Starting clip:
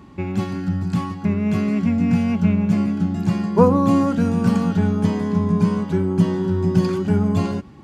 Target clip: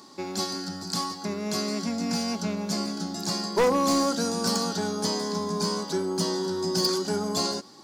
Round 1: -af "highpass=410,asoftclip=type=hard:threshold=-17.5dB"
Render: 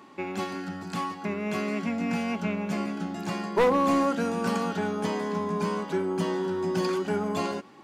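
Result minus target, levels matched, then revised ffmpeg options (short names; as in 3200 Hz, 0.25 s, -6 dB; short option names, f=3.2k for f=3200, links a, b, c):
8000 Hz band -12.5 dB
-af "highpass=410,highshelf=f=3.5k:t=q:w=3:g=10.5,asoftclip=type=hard:threshold=-17.5dB"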